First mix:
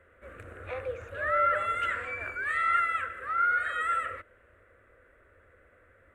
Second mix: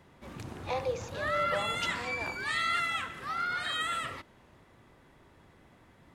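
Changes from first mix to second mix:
background: add graphic EQ with 31 bands 125 Hz +9 dB, 500 Hz -11 dB, 3.15 kHz +5 dB, 8 kHz -7 dB; master: remove FFT filter 100 Hz 0 dB, 160 Hz -16 dB, 610 Hz -1 dB, 880 Hz -17 dB, 1.4 kHz +8 dB, 3 kHz -6 dB, 4.9 kHz -26 dB, 9 kHz -11 dB

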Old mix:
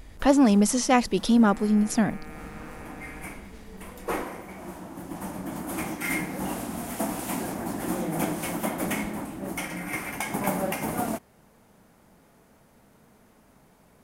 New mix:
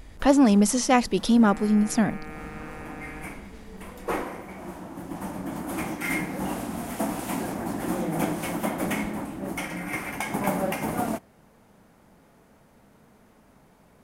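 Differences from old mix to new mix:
first sound: add treble shelf 5.2 kHz -5 dB; second sound +4.0 dB; reverb: on, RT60 0.45 s

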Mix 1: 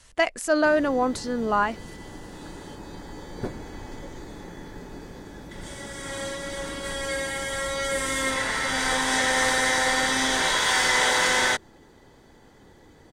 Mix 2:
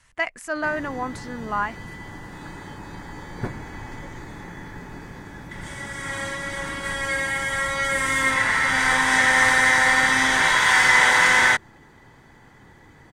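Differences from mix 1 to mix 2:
speech -7.5 dB; master: add ten-band graphic EQ 125 Hz +7 dB, 500 Hz -4 dB, 1 kHz +5 dB, 2 kHz +8 dB, 4 kHz -3 dB

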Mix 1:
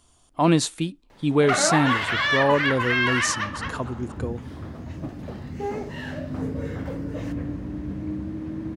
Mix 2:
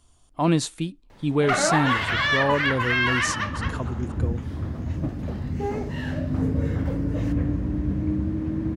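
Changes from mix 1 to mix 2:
speech -3.5 dB; second sound +3.0 dB; master: add bass shelf 110 Hz +9 dB

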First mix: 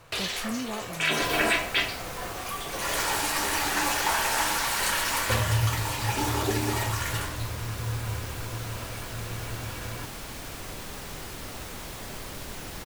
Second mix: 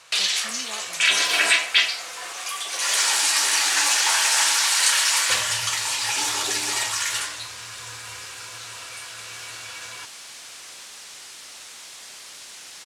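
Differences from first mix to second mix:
second sound -7.5 dB; master: add frequency weighting ITU-R 468

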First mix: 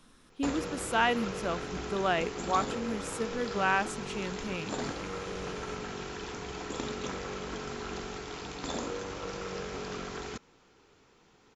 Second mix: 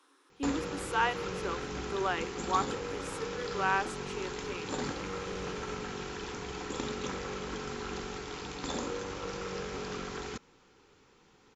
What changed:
speech: add rippled Chebyshev high-pass 270 Hz, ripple 6 dB; master: add Butterworth band-stop 660 Hz, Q 6.7

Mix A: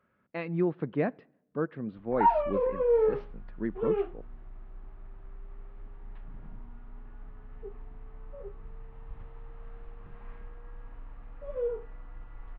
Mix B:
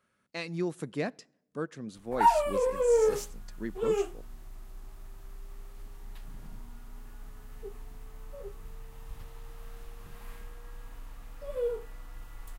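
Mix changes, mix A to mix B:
speech -4.5 dB; master: remove Gaussian low-pass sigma 3.8 samples

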